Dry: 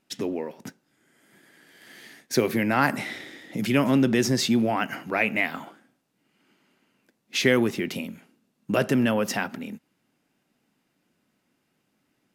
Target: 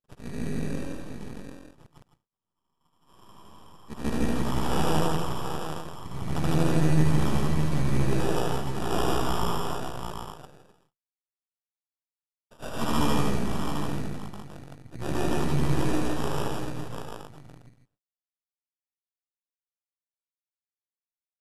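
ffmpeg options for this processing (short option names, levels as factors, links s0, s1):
-filter_complex "[0:a]afftfilt=real='re':imag='-im':win_size=8192:overlap=0.75,agate=range=0.00112:threshold=0.00141:ratio=16:detection=peak,lowshelf=f=380:g=-4.5,acontrast=59,asoftclip=type=tanh:threshold=0.2,bandreject=f=1000:w=15,adynamicsmooth=sensitivity=4:basefreq=3000,aresample=8000,aeval=exprs='max(val(0),0)':c=same,aresample=44100,acrusher=samples=12:mix=1:aa=0.000001,asplit=2[s0][s1];[s1]aecho=0:1:44|72|93|100|305|428:0.708|0.168|0.531|0.501|0.106|0.531[s2];[s0][s2]amix=inputs=2:normalize=0,asetrate=25442,aresample=44100,adynamicequalizer=threshold=0.00112:dfrequency=1500:dqfactor=0.7:tfrequency=1500:tqfactor=0.7:attack=5:release=100:ratio=0.375:range=1.5:mode=cutabove:tftype=highshelf,volume=0.891"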